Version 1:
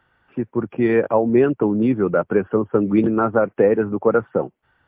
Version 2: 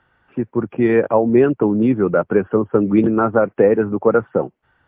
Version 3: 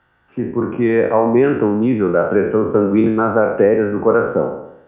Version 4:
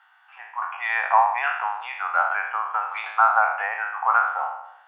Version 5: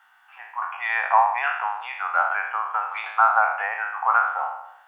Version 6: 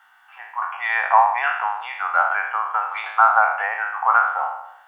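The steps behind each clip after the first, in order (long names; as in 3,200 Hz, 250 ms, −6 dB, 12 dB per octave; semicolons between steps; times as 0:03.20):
high-frequency loss of the air 110 metres; level +2.5 dB
peak hold with a decay on every bin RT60 0.78 s; level −1 dB
Chebyshev high-pass filter 740 Hz, order 6; level +4.5 dB
bit-depth reduction 12 bits, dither none
notch filter 2,500 Hz, Q 17; level +3 dB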